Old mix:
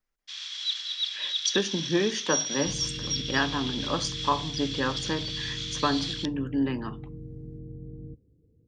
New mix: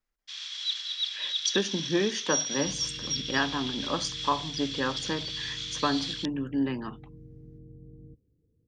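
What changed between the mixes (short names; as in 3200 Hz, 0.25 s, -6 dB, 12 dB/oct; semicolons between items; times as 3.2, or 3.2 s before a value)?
second sound -7.5 dB; reverb: off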